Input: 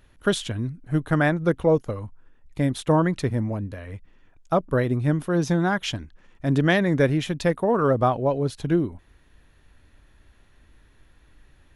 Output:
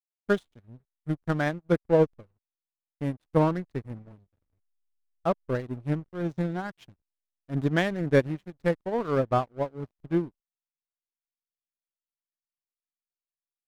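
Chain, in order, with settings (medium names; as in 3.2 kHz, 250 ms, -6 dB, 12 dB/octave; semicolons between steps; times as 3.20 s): feedback echo behind a low-pass 423 ms, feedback 47%, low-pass 4 kHz, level -24 dB; hysteresis with a dead band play -24.5 dBFS; tempo 0.86×; upward expansion 2.5:1, over -38 dBFS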